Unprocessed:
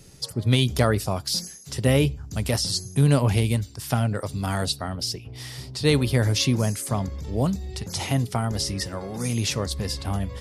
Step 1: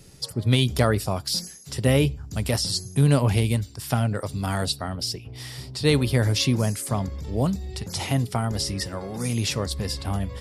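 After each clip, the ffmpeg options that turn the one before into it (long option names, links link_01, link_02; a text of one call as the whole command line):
ffmpeg -i in.wav -af "bandreject=frequency=6300:width=14" out.wav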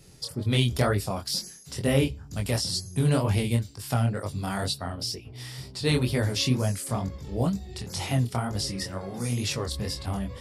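ffmpeg -i in.wav -af "flanger=delay=20:depth=5.7:speed=2.1" out.wav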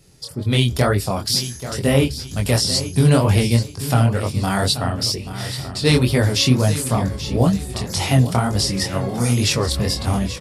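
ffmpeg -i in.wav -af "dynaudnorm=framelen=130:gausssize=5:maxgain=10.5dB,aecho=1:1:833|1666|2499:0.237|0.0806|0.0274" out.wav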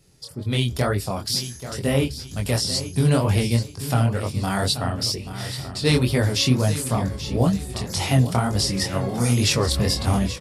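ffmpeg -i in.wav -af "dynaudnorm=framelen=490:gausssize=3:maxgain=11.5dB,volume=-5.5dB" out.wav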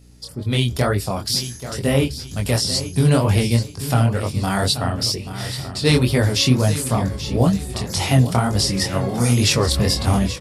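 ffmpeg -i in.wav -af "aeval=exprs='val(0)+0.00316*(sin(2*PI*60*n/s)+sin(2*PI*2*60*n/s)/2+sin(2*PI*3*60*n/s)/3+sin(2*PI*4*60*n/s)/4+sin(2*PI*5*60*n/s)/5)':channel_layout=same,volume=3dB" out.wav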